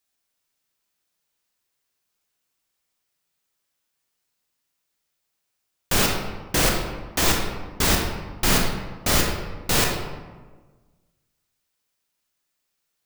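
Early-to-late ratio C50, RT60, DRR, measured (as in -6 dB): 2.5 dB, 1.4 s, 0.5 dB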